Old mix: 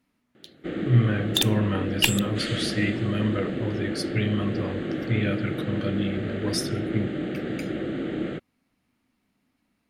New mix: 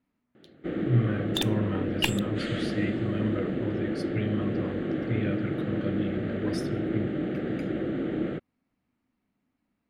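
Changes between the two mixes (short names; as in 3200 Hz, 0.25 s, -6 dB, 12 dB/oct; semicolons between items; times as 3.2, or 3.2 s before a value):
speech -4.5 dB; master: add high shelf 2900 Hz -11.5 dB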